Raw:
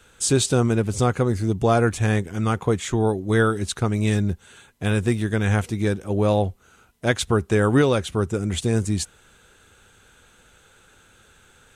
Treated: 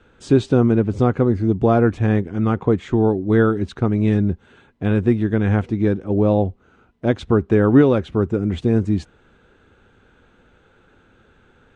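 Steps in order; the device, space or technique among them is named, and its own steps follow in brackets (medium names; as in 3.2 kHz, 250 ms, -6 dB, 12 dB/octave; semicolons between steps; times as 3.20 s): phone in a pocket (low-pass 4 kHz 12 dB/octave; peaking EQ 280 Hz +6 dB 1.1 oct; treble shelf 2.3 kHz -11 dB); 6.04–7.23 s: dynamic bell 1.7 kHz, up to -5 dB, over -38 dBFS, Q 1.2; trim +1.5 dB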